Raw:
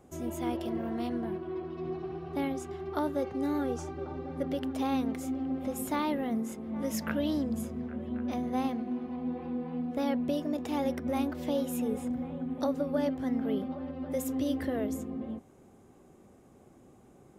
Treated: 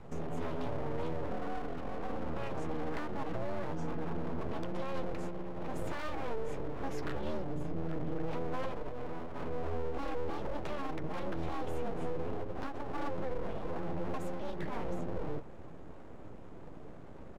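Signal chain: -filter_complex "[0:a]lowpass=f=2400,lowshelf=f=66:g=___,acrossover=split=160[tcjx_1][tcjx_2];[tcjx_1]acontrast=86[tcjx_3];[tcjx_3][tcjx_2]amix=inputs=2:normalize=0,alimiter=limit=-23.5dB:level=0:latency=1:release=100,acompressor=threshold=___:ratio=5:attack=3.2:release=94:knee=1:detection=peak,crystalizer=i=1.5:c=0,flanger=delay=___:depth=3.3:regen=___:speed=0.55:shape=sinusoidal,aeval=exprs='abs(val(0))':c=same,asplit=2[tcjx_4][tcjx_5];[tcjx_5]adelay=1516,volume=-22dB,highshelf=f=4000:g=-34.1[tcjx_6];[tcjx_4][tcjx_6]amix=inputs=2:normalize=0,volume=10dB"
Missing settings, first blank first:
7.5, -38dB, 9.6, -26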